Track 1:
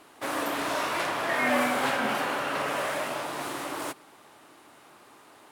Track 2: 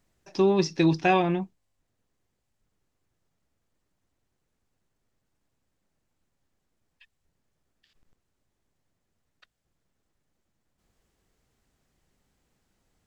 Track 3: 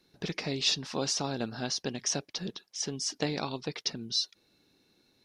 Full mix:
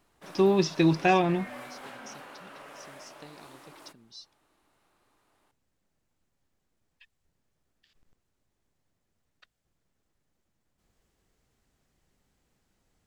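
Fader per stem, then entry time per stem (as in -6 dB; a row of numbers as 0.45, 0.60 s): -18.0, -0.5, -18.0 dB; 0.00, 0.00, 0.00 s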